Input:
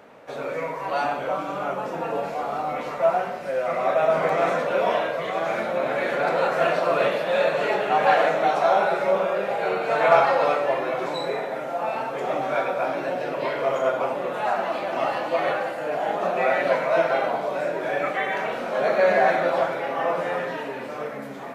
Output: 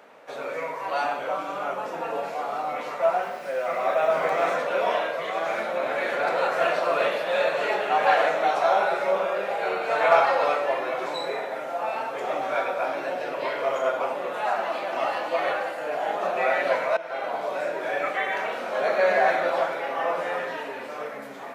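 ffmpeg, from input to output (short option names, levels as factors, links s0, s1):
-filter_complex "[0:a]asettb=1/sr,asplit=3[s0][s1][s2];[s0]atrim=end=3.224[s3];[s1]atrim=start=3.22:end=4.55,asetpts=PTS-STARTPTS,afade=t=in:d=0.004:c=qsin,afade=t=out:st=1.326:d=0.004:c=qsin,acrusher=bits=8:mix=0:aa=0.5[s4];[s2]atrim=start=4.546[s5];[s3][s4]acrossfade=d=0.004:c1=hsin:c2=qsin[s6];[s6][s5]acrossfade=d=0.004:c1=qsin:c2=hsin,asplit=2[s7][s8];[s7]atrim=end=16.97,asetpts=PTS-STARTPTS,afade=t=out:st=16.966:d=0.004:c=hsin:silence=0.105925[s9];[s8]atrim=start=16.97,asetpts=PTS-STARTPTS,afade=t=in:d=0.48:silence=0.105925[s10];[s9][s10]concat=n=2:v=0:a=1,highpass=f=500:p=1"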